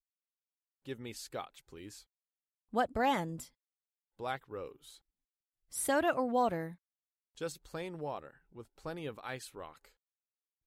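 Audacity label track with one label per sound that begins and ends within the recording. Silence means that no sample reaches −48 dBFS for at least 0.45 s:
0.870000	2.000000	sound
2.730000	3.460000	sound
4.190000	4.950000	sound
5.730000	6.740000	sound
7.370000	9.850000	sound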